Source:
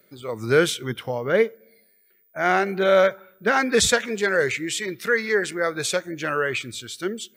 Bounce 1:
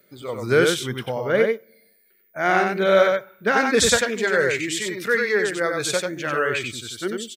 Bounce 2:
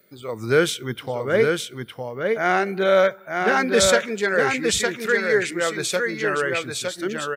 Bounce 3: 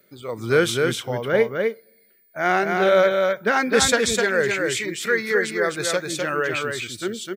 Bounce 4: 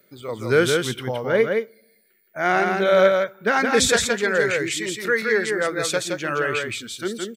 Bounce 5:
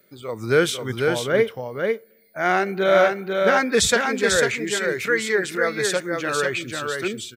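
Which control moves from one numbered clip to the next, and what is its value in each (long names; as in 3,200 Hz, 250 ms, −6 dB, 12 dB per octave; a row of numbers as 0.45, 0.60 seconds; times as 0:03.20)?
single-tap delay, delay time: 93, 910, 255, 168, 495 milliseconds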